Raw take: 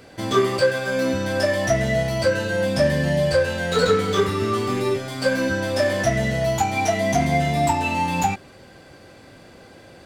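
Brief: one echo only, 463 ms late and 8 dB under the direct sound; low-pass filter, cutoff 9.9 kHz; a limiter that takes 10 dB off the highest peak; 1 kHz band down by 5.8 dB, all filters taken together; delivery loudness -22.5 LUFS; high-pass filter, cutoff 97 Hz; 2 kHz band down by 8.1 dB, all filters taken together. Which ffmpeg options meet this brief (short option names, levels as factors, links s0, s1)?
-af "highpass=97,lowpass=9900,equalizer=f=1000:t=o:g=-7,equalizer=f=2000:t=o:g=-8,alimiter=limit=0.119:level=0:latency=1,aecho=1:1:463:0.398,volume=1.58"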